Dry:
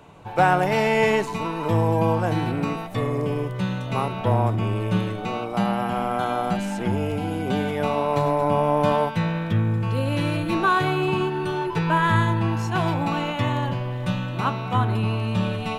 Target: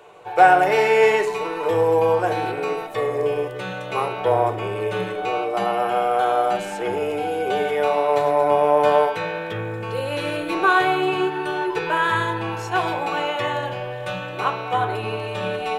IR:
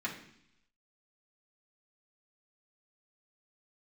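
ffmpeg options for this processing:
-filter_complex "[0:a]lowshelf=f=330:t=q:w=3:g=-10,asplit=2[s0][s1];[1:a]atrim=start_sample=2205[s2];[s1][s2]afir=irnorm=-1:irlink=0,volume=0.596[s3];[s0][s3]amix=inputs=2:normalize=0,volume=0.841"

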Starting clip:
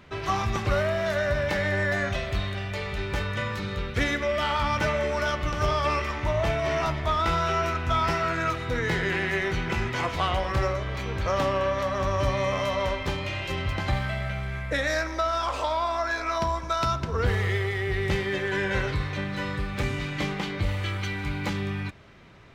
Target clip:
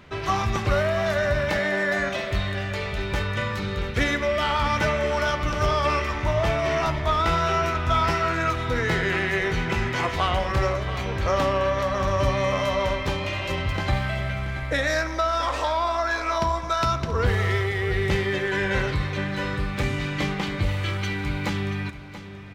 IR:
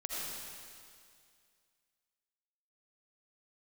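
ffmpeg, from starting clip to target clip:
-filter_complex "[0:a]asettb=1/sr,asplit=3[s0][s1][s2];[s0]atrim=end=1.584[s3];[s1]atrim=start=1.58:end=2.31,asetpts=PTS-STARTPTS,afade=t=in:d=0.004:c=qsin,afade=t=out:st=0.726:d=0.004:c=qsin,highpass=f=170:w=0.5412,highpass=f=170:w=1.3066[s4];[s2]atrim=start=2.306[s5];[s3][s4]acrossfade=d=0.004:c1=hsin:c2=qsin[s6];[s6][s5]acrossfade=d=0.004:c1=qsin:c2=hsin,asplit=2[s7][s8];[s8]aecho=0:1:681:0.224[s9];[s7][s9]amix=inputs=2:normalize=0,volume=1.33"

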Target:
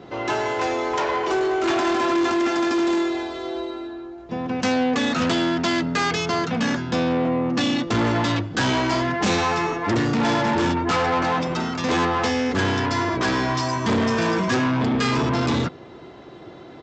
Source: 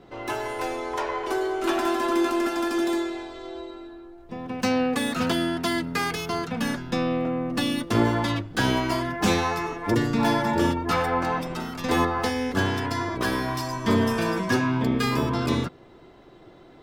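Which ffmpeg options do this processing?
-af "aresample=16000,asoftclip=type=tanh:threshold=0.0501,aresample=44100,highpass=74,volume=2.66"

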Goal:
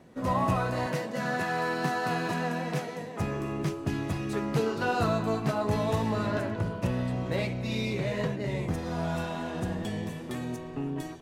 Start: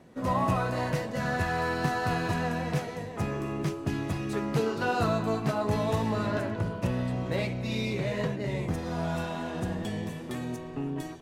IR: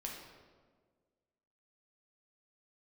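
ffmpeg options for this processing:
-filter_complex "[0:a]asettb=1/sr,asplit=3[s0][s1][s2];[s0]atrim=end=0.864[s3];[s1]atrim=start=0.86:end=3.2,asetpts=PTS-STARTPTS,afade=t=in:d=0.004:c=qsin,afade=t=out:st=2.336:d=0.004:c=qsin,highpass=f=150:w=0.5412,highpass=f=150:w=1.3066[s4];[s2]atrim=start=3.196[s5];[s3][s4]acrossfade=d=0.004:c1=hsin:c2=qsin[s6];[s6][s5]acrossfade=d=0.004:c1=qsin:c2=hsin"

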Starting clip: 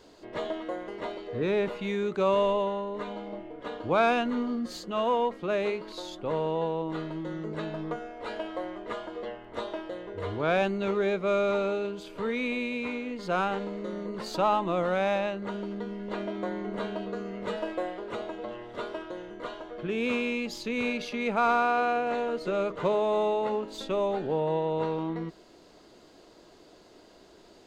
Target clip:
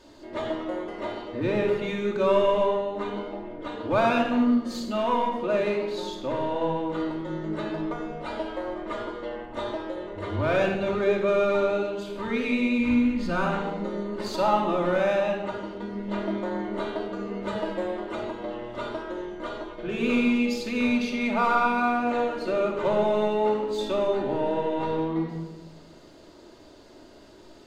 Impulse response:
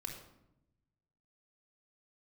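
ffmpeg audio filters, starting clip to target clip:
-filter_complex "[0:a]asplit=3[s0][s1][s2];[s0]afade=t=out:st=12.78:d=0.02[s3];[s1]asubboost=boost=5.5:cutoff=190,afade=t=in:st=12.78:d=0.02,afade=t=out:st=13.35:d=0.02[s4];[s2]afade=t=in:st=13.35:d=0.02[s5];[s3][s4][s5]amix=inputs=3:normalize=0,asplit=2[s6][s7];[s7]asoftclip=type=hard:threshold=0.0473,volume=0.501[s8];[s6][s8]amix=inputs=2:normalize=0[s9];[1:a]atrim=start_sample=2205,asetrate=33075,aresample=44100[s10];[s9][s10]afir=irnorm=-1:irlink=0"

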